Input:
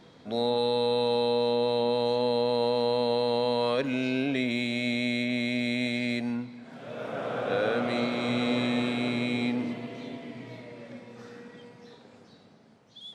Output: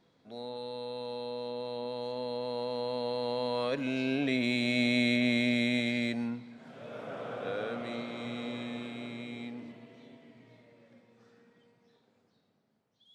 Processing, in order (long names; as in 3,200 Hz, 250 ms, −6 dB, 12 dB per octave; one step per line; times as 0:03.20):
source passing by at 0:05.13, 6 m/s, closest 4.8 metres
level +1.5 dB